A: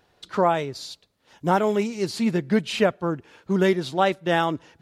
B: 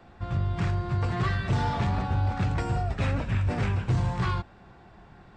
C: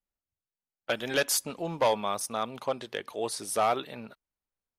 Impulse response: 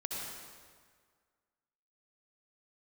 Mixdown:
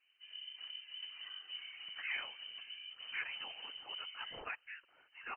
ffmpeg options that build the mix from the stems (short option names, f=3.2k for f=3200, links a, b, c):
-filter_complex "[0:a]highpass=1.4k,adelay=1650,volume=-3dB[a];[1:a]volume=-16.5dB[b];[a][b]amix=inputs=2:normalize=0,highshelf=f=2.2k:g=-8.5,afftfilt=real='hypot(re,im)*cos(2*PI*random(0))':imag='hypot(re,im)*sin(2*PI*random(1))':win_size=512:overlap=0.75,lowpass=f=2.6k:t=q:w=0.5098,lowpass=f=2.6k:t=q:w=0.6013,lowpass=f=2.6k:t=q:w=0.9,lowpass=f=2.6k:t=q:w=2.563,afreqshift=-3100"